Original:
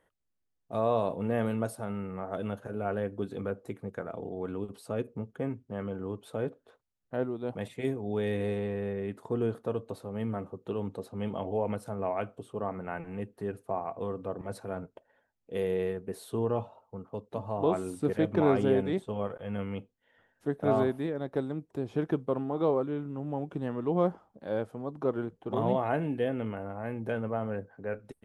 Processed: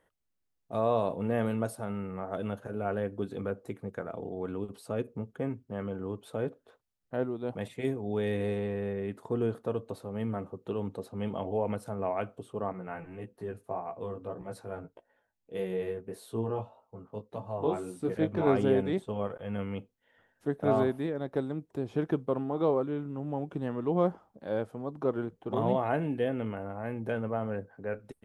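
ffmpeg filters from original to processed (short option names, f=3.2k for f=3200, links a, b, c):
-filter_complex "[0:a]asettb=1/sr,asplit=3[a][b][c];[a]atrim=end=12.724[d];[b]atrim=start=12.72:end=18.47,asetpts=PTS-STARTPTS,afade=t=in:d=0.004:c=qsin,afade=t=out:st=5.746:d=0.004:c=qsin,flanger=delay=16:depth=3.3:speed=1.7[e];[c]atrim=start=18.466[f];[d][e]acrossfade=d=0.004:c1=hsin:c2=qsin[g];[g][f]acrossfade=d=0.004:c1=qsin:c2=hsin"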